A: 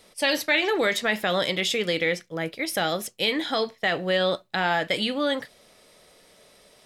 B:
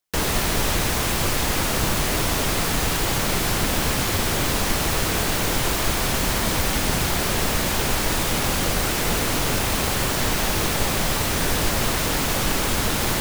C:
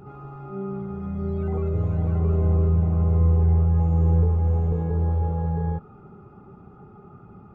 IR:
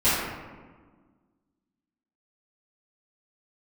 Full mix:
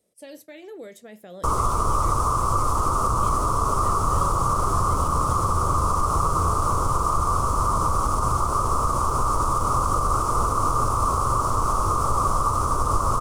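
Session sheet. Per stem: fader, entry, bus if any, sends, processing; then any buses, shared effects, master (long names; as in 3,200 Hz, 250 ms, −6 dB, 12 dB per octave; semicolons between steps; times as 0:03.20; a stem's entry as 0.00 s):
−14.0 dB, 0.00 s, no send, high-pass filter 58 Hz; flat-topped bell 2,100 Hz −13 dB 3 octaves
+2.5 dB, 1.30 s, no send, drawn EQ curve 120 Hz 0 dB, 170 Hz −11 dB, 510 Hz −4 dB, 790 Hz −7 dB, 1,200 Hz +14 dB, 1,700 Hz −28 dB, 3,900 Hz −23 dB, 5,500 Hz −12 dB, 9,700 Hz −7 dB, 14,000 Hz −25 dB
−11.0 dB, 2.30 s, no send, no processing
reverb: not used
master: brickwall limiter −12 dBFS, peak gain reduction 4.5 dB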